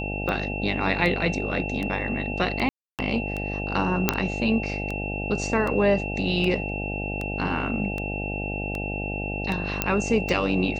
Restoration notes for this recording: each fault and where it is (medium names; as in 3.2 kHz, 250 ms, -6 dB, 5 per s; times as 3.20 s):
buzz 50 Hz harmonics 17 -31 dBFS
tick 78 rpm -17 dBFS
whine 2.7 kHz -32 dBFS
2.69–2.99 s: dropout 298 ms
4.09 s: pop -2 dBFS
9.82 s: pop -6 dBFS